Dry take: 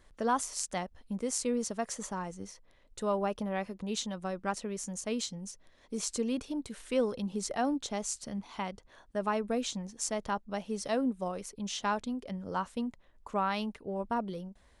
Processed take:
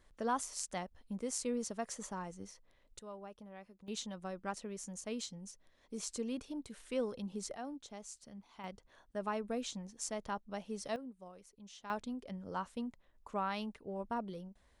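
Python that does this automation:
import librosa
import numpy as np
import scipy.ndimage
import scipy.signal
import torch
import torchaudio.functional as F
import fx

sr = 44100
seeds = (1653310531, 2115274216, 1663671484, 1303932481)

y = fx.gain(x, sr, db=fx.steps((0.0, -5.5), (2.99, -18.0), (3.88, -7.0), (7.56, -14.0), (8.64, -6.5), (10.96, -17.5), (11.9, -6.0)))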